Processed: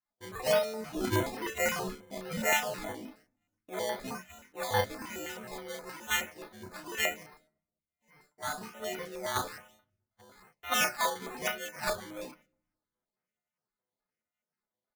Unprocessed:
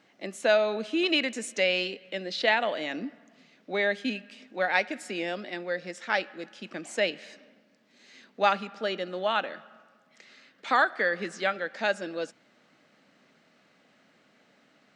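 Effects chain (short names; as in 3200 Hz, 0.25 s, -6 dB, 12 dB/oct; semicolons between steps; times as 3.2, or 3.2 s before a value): frequency quantiser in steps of 3 st; gate -49 dBFS, range -29 dB; in parallel at -2.5 dB: level quantiser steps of 22 dB; on the sum: low shelf 140 Hz -10 dB; decimation with a swept rate 13×, swing 60% 1.1 Hz; 7.23–8.58 resonator 150 Hz, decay 0.17 s, harmonics all, mix 90%; flange 0.41 Hz, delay 0.7 ms, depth 5.6 ms, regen -84%; doubler 32 ms -4.5 dB; on a send at -22.5 dB: reverb RT60 0.90 s, pre-delay 5 ms; on the sum: stepped notch 9.5 Hz 420–7400 Hz; gain -5.5 dB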